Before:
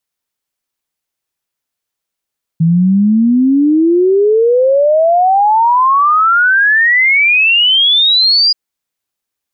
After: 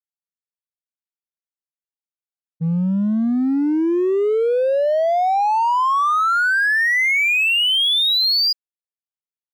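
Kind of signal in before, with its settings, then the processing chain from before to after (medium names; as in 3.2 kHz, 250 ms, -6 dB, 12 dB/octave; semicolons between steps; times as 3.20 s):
log sweep 160 Hz -> 4.9 kHz 5.93 s -6.5 dBFS
expander -3 dBFS; bass shelf 140 Hz -5 dB; in parallel at -5 dB: hard clipper -28 dBFS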